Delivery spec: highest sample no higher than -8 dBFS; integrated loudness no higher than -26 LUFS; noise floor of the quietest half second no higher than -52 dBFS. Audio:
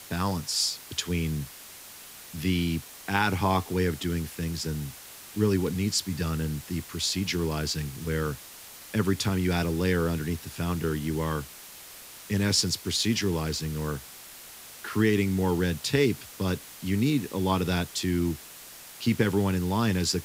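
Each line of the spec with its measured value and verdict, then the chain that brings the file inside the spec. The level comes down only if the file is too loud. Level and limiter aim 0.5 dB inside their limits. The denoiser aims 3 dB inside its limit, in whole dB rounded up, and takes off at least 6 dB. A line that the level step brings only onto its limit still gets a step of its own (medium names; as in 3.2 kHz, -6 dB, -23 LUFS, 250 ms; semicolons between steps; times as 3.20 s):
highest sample -9.0 dBFS: pass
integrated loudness -28.0 LUFS: pass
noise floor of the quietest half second -46 dBFS: fail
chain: noise reduction 9 dB, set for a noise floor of -46 dBFS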